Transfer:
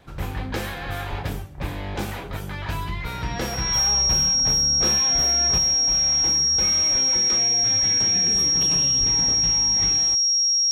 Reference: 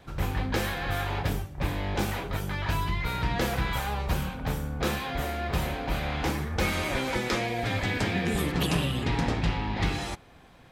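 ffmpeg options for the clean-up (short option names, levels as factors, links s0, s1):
-filter_complex "[0:a]bandreject=f=5600:w=30,asplit=3[s0][s1][s2];[s0]afade=t=out:st=1.09:d=0.02[s3];[s1]highpass=f=140:w=0.5412,highpass=f=140:w=1.3066,afade=t=in:st=1.09:d=0.02,afade=t=out:st=1.21:d=0.02[s4];[s2]afade=t=in:st=1.21:d=0.02[s5];[s3][s4][s5]amix=inputs=3:normalize=0,asplit=3[s6][s7][s8];[s6]afade=t=out:st=8.99:d=0.02[s9];[s7]highpass=f=140:w=0.5412,highpass=f=140:w=1.3066,afade=t=in:st=8.99:d=0.02,afade=t=out:st=9.11:d=0.02[s10];[s8]afade=t=in:st=9.11:d=0.02[s11];[s9][s10][s11]amix=inputs=3:normalize=0,asetnsamples=n=441:p=0,asendcmd='5.58 volume volume 5.5dB',volume=1"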